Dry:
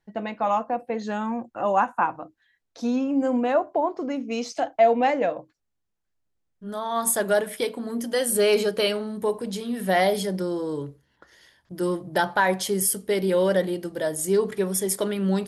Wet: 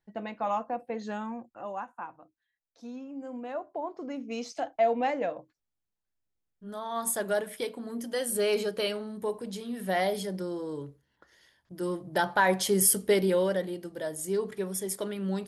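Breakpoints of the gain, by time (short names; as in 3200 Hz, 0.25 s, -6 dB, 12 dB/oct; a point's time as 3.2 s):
1.14 s -6.5 dB
1.86 s -17 dB
3.25 s -17 dB
4.25 s -7 dB
11.82 s -7 dB
13.04 s +2 dB
13.58 s -8 dB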